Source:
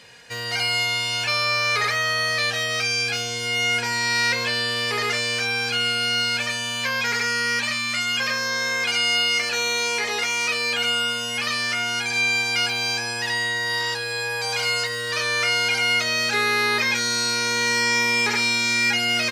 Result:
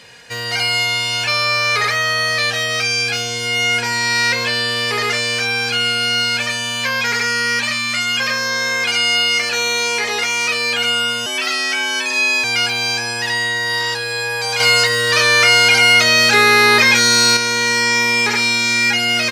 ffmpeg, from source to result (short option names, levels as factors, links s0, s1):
-filter_complex "[0:a]asettb=1/sr,asplit=3[s0][s1][s2];[s0]atrim=end=11.264[s3];[s1]atrim=start=11.26:end=12.44,asetpts=PTS-STARTPTS,afade=t=in:d=0.004:c=qsin,afade=t=out:st=1.176:d=0.004:c=qsin,afreqshift=140[s4];[s2]atrim=start=12.436[s5];[s3][s4]acrossfade=d=0.004:c1=hsin:c2=qsin[s6];[s6][s5]acrossfade=d=0.004:c1=qsin:c2=hsin,asettb=1/sr,asplit=3[s7][s8][s9];[s7]atrim=end=14.604[s10];[s8]atrim=start=14.6:end=17.37,asetpts=PTS-STARTPTS,afade=t=in:d=0.004:c=qsin,afade=t=out:st=2.766:d=0.004:c=qsin,acontrast=55[s11];[s9]atrim=start=17.366[s12];[s10][s11]acrossfade=d=0.004:c1=hsin:c2=qsin[s13];[s13][s12]acrossfade=d=0.004:c1=qsin:c2=hsin,acontrast=32"